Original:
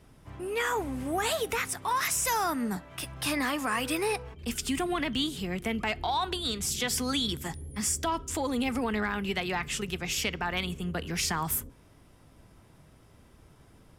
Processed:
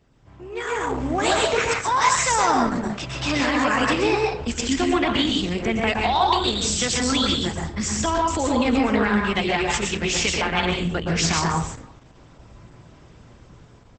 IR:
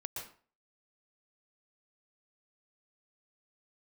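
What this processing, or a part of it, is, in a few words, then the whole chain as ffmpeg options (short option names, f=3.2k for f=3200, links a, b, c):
speakerphone in a meeting room: -filter_complex "[0:a]asettb=1/sr,asplit=3[a][b][c];[a]atrim=end=7.584[d];[b]atrim=start=7.58:end=8.25,asetpts=PTS-STARTPTS,afade=t=in:d=0.004:c=qsin,afade=t=out:st=0.666:d=0.004:c=qsin,acrossover=split=6700[e][f];[f]acompressor=threshold=-39dB:ratio=4:attack=1:release=60[g];[e][g]amix=inputs=2:normalize=0[h];[c]atrim=start=8.246[i];[d][h]acrossfade=d=0.004:c1=hsin:c2=qsin[j];[j][i]acrossfade=d=0.004:c1=qsin:c2=hsin[k];[1:a]atrim=start_sample=2205[l];[k][l]afir=irnorm=-1:irlink=0,asplit=2[m][n];[n]adelay=340,highpass=300,lowpass=3.4k,asoftclip=type=hard:threshold=-25.5dB,volume=-27dB[o];[m][o]amix=inputs=2:normalize=0,dynaudnorm=f=270:g=7:m=11.5dB" -ar 48000 -c:a libopus -b:a 12k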